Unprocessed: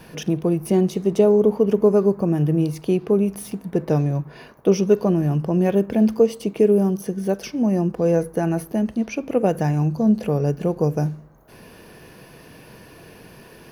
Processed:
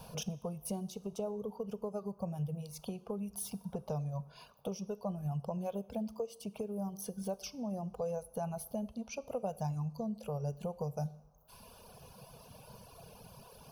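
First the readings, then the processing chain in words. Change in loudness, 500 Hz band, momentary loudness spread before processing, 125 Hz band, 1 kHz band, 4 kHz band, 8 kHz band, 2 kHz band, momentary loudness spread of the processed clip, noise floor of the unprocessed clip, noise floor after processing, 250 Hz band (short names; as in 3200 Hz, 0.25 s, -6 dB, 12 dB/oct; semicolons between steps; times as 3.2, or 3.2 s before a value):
-19.5 dB, -21.0 dB, 8 LU, -17.0 dB, -13.5 dB, -11.0 dB, -8.0 dB, -20.0 dB, 17 LU, -46 dBFS, -60 dBFS, -20.5 dB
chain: reverb removal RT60 1.5 s; compressor 5:1, threshold -28 dBFS, peak gain reduction 15.5 dB; fixed phaser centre 780 Hz, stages 4; two-slope reverb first 0.77 s, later 2.6 s, DRR 16.5 dB; gain -2.5 dB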